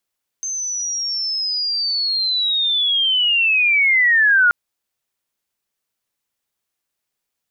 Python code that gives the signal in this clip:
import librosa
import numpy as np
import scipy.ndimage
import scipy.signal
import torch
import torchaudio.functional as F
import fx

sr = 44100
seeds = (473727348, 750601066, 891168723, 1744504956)

y = fx.chirp(sr, length_s=4.08, from_hz=6300.0, to_hz=1400.0, law='linear', from_db=-22.0, to_db=-10.0)